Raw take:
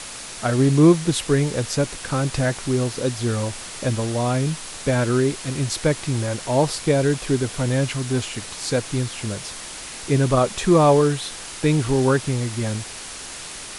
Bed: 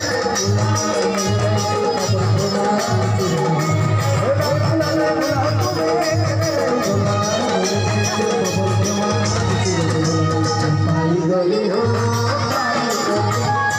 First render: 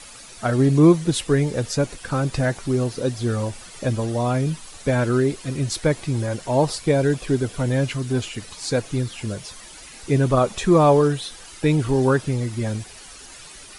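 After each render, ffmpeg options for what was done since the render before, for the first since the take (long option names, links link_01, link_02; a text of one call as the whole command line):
ffmpeg -i in.wav -af "afftdn=noise_reduction=11:noise_floor=-35" out.wav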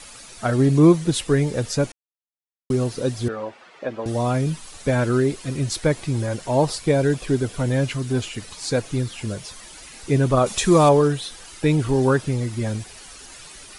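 ffmpeg -i in.wav -filter_complex "[0:a]asettb=1/sr,asplit=3[link_01][link_02][link_03];[link_01]atrim=end=3.284[link_04];[link_02]atrim=start=3.28:end=4.06,asetpts=PTS-STARTPTS,afade=type=in:duration=0.004:curve=qsin,afade=type=out:start_time=0.776:duration=0.004:curve=qsin,highpass=370,lowpass=2200[link_05];[link_03]atrim=start=4.056[link_06];[link_04][link_05]acrossfade=duration=0.004:curve1=hsin:curve2=qsin[link_07];[link_07][link_06]acrossfade=duration=0.004:curve1=qsin:curve2=hsin,asettb=1/sr,asplit=3[link_08][link_09][link_10];[link_08]atrim=end=10.464[link_11];[link_09]atrim=start=10.46:end=10.89,asetpts=PTS-STARTPTS,afade=type=in:duration=0.004:curve=qsin,afade=type=out:start_time=0.426:duration=0.004:curve=qsin,highshelf=frequency=3100:gain=10[link_12];[link_10]atrim=start=10.886[link_13];[link_11][link_12]acrossfade=duration=0.004:curve1=hsin:curve2=qsin[link_14];[link_14][link_13]acrossfade=duration=0.004:curve1=qsin:curve2=hsin,asplit=3[link_15][link_16][link_17];[link_15]atrim=end=1.92,asetpts=PTS-STARTPTS,afade=type=out:start_time=1.916:duration=0.004:curve=hsin[link_18];[link_16]atrim=start=1.92:end=2.7,asetpts=PTS-STARTPTS,volume=0[link_19];[link_17]atrim=start=2.7,asetpts=PTS-STARTPTS,afade=type=in:duration=0.004:curve=hsin[link_20];[link_18][link_19][link_20]concat=n=3:v=0:a=1" out.wav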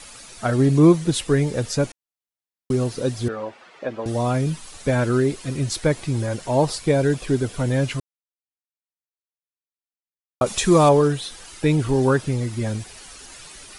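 ffmpeg -i in.wav -filter_complex "[0:a]asplit=3[link_01][link_02][link_03];[link_01]atrim=end=8,asetpts=PTS-STARTPTS,afade=type=out:start_time=7.996:duration=0.004:curve=hsin[link_04];[link_02]atrim=start=8:end=10.41,asetpts=PTS-STARTPTS,volume=0[link_05];[link_03]atrim=start=10.41,asetpts=PTS-STARTPTS,afade=type=in:duration=0.004:curve=hsin[link_06];[link_04][link_05][link_06]concat=n=3:v=0:a=1" out.wav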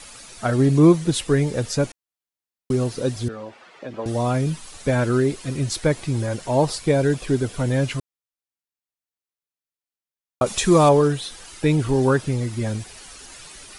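ffmpeg -i in.wav -filter_complex "[0:a]asettb=1/sr,asplit=3[link_01][link_02][link_03];[link_01]atrim=end=3.164[link_04];[link_02]atrim=start=3.16:end=3.94,asetpts=PTS-STARTPTS,afade=type=in:duration=0.004:curve=qsin,afade=type=out:start_time=0.776:duration=0.004:curve=qsin,acrossover=split=290|3000[link_05][link_06][link_07];[link_06]acompressor=threshold=-33dB:ratio=6:attack=3.2:release=140:knee=2.83:detection=peak[link_08];[link_05][link_08][link_07]amix=inputs=3:normalize=0[link_09];[link_03]atrim=start=3.936[link_10];[link_04][link_09]acrossfade=duration=0.004:curve1=hsin:curve2=qsin[link_11];[link_11][link_10]acrossfade=duration=0.004:curve1=qsin:curve2=hsin" out.wav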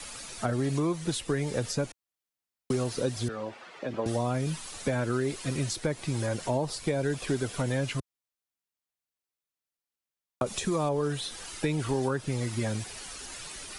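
ffmpeg -i in.wav -filter_complex "[0:a]alimiter=limit=-11.5dB:level=0:latency=1:release=394,acrossover=split=86|570[link_01][link_02][link_03];[link_01]acompressor=threshold=-49dB:ratio=4[link_04];[link_02]acompressor=threshold=-29dB:ratio=4[link_05];[link_03]acompressor=threshold=-33dB:ratio=4[link_06];[link_04][link_05][link_06]amix=inputs=3:normalize=0" out.wav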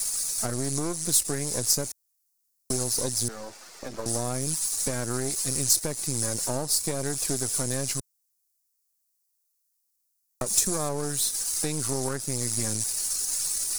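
ffmpeg -i in.wav -af "aeval=exprs='if(lt(val(0),0),0.251*val(0),val(0))':channel_layout=same,aexciter=amount=5.6:drive=7.9:freq=4600" out.wav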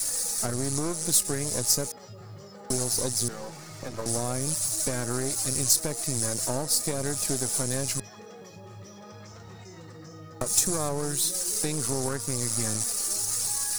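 ffmpeg -i in.wav -i bed.wav -filter_complex "[1:a]volume=-27.5dB[link_01];[0:a][link_01]amix=inputs=2:normalize=0" out.wav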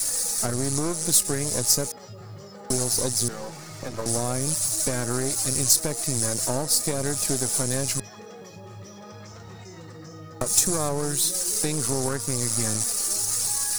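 ffmpeg -i in.wav -af "volume=3dB" out.wav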